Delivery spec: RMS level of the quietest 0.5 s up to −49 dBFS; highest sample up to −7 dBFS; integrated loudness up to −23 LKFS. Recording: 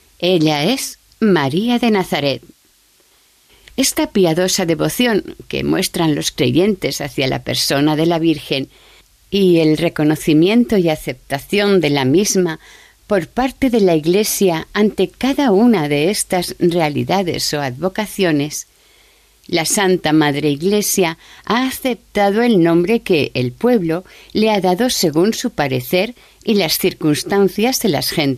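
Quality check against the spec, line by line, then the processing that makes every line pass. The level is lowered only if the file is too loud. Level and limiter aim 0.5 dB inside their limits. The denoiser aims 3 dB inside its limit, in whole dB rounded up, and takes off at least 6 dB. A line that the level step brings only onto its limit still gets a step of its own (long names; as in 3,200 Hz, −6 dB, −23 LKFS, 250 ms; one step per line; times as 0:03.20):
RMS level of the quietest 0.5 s −54 dBFS: in spec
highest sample −4.5 dBFS: out of spec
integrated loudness −16.0 LKFS: out of spec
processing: level −7.5 dB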